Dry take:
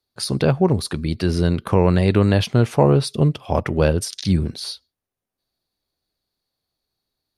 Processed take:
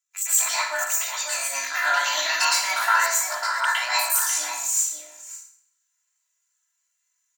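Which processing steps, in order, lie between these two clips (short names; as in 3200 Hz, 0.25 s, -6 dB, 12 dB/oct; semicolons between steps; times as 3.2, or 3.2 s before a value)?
HPF 860 Hz 24 dB/oct; bell 4600 Hz +3 dB 0.24 oct; comb 4.7 ms, depth 65%; pitch shift +8 st; outdoor echo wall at 93 m, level -7 dB; reverb RT60 0.65 s, pre-delay 0.108 s, DRR -9.5 dB; gain -3.5 dB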